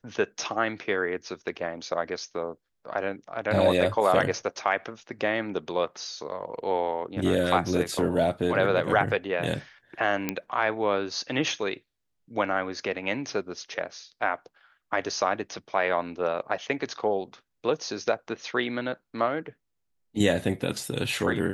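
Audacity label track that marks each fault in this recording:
10.290000	10.290000	click −11 dBFS

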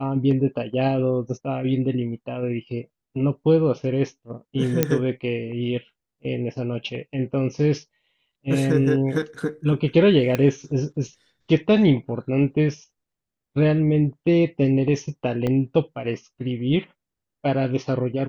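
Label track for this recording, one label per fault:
4.830000	4.830000	click −4 dBFS
10.350000	10.350000	click −9 dBFS
15.470000	15.470000	drop-out 3.5 ms

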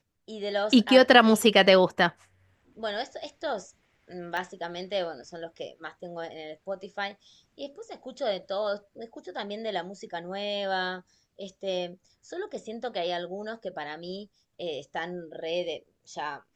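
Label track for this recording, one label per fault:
4.370000	4.370000	drop-out 2.3 ms

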